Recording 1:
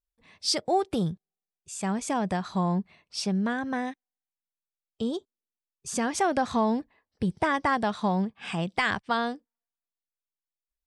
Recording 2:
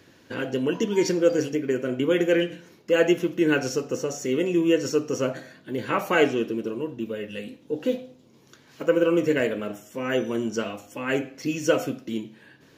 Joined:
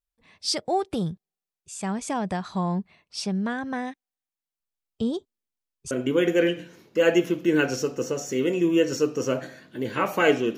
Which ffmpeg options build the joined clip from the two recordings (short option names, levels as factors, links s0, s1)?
-filter_complex "[0:a]asettb=1/sr,asplit=3[s0][s1][s2];[s0]atrim=end=4.604[s3];[s1]atrim=start=4.6:end=5.91,asetpts=PTS-STARTPTS,afade=t=in:d=0.004:c=qsin,afade=t=out:st=1.306:d=0.004:c=qsin,lowshelf=f=230:g=8[s4];[s2]atrim=start=5.906[s5];[s3][s4]acrossfade=d=0.004:c1=hsin:c2=qsin[s6];[s6][s5]acrossfade=d=0.004:c1=qsin:c2=hsin,apad=whole_dur=10.57,atrim=end=10.57,atrim=end=5.912[s7];[1:a]atrim=start=1.838:end=6.5[s8];[s7][s8]acrossfade=d=0.004:c1=hsin:c2=hsin"